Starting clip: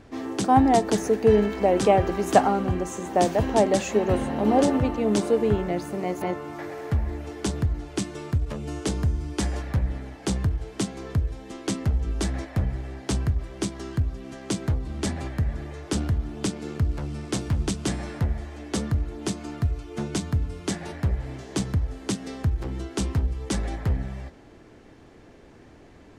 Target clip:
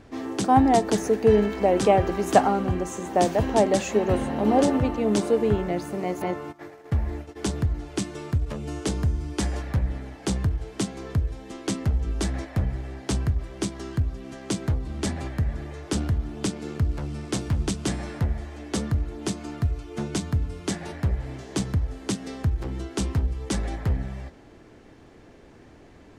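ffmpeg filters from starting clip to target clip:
-filter_complex "[0:a]asplit=3[a][b][c];[a]afade=t=out:st=6.51:d=0.02[d];[b]agate=range=-18dB:threshold=-33dB:ratio=16:detection=peak,afade=t=in:st=6.51:d=0.02,afade=t=out:st=7.35:d=0.02[e];[c]afade=t=in:st=7.35:d=0.02[f];[d][e][f]amix=inputs=3:normalize=0"

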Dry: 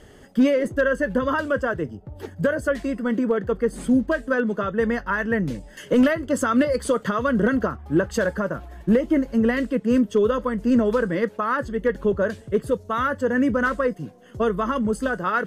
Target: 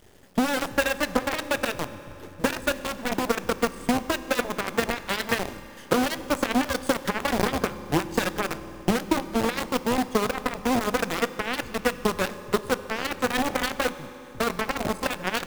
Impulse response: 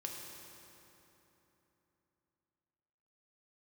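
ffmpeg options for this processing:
-filter_complex "[0:a]equalizer=f=1.2k:t=o:w=0.31:g=-8,acompressor=threshold=-20dB:ratio=5,acrusher=bits=6:dc=4:mix=0:aa=0.000001,aeval=exprs='0.335*(cos(1*acos(clip(val(0)/0.335,-1,1)))-cos(1*PI/2))+0.075*(cos(7*acos(clip(val(0)/0.335,-1,1)))-cos(7*PI/2))':c=same,asplit=2[a][b];[1:a]atrim=start_sample=2205[c];[b][c]afir=irnorm=-1:irlink=0,volume=-7dB[d];[a][d]amix=inputs=2:normalize=0"

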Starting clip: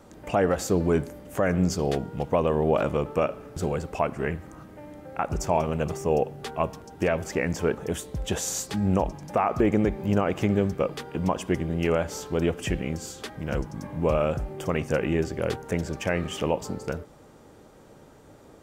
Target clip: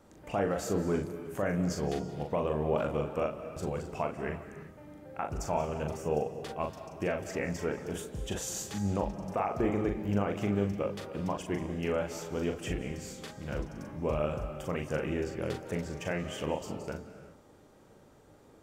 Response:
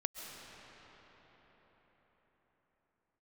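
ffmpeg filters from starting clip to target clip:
-filter_complex "[0:a]asplit=2[a][b];[1:a]atrim=start_sample=2205,afade=t=out:st=0.41:d=0.01,atrim=end_sample=18522,adelay=40[c];[b][c]afir=irnorm=-1:irlink=0,volume=-3.5dB[d];[a][d]amix=inputs=2:normalize=0,volume=-8.5dB"

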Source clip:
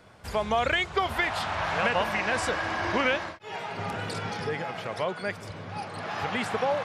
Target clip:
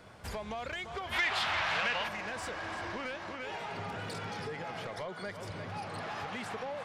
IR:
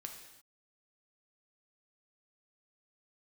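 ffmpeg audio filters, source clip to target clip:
-filter_complex "[0:a]asplit=2[a][b];[b]aecho=0:1:343:0.2[c];[a][c]amix=inputs=2:normalize=0,acompressor=threshold=-34dB:ratio=6,asoftclip=type=tanh:threshold=-32.5dB,asplit=3[d][e][f];[d]afade=t=out:st=1.11:d=0.02[g];[e]equalizer=f=2.9k:w=0.45:g=12.5,afade=t=in:st=1.11:d=0.02,afade=t=out:st=2.07:d=0.02[h];[f]afade=t=in:st=2.07:d=0.02[i];[g][h][i]amix=inputs=3:normalize=0,asettb=1/sr,asplit=3[j][k][l];[j]atrim=end=4.914[m];[k]atrim=start=4.91:end=5.38,asetpts=PTS-STARTPTS,afade=t=in:d=0.004:c=qsin,afade=t=out:st=0.466:d=0.004:c=qsin,bandreject=f=2.6k:w=7.4[n];[l]atrim=start=5.376[o];[m][n]acrossfade=d=0.004:c1=hsin:c2=qsin[p];[p][o]acrossfade=d=0.004:c1=qsin:c2=hsin"

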